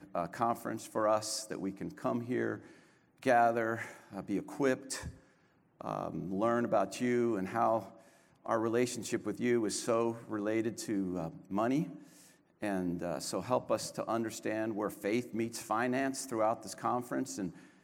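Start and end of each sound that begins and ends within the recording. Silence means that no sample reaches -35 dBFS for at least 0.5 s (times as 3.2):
3.23–5.08
5.81–7.8
8.46–11.84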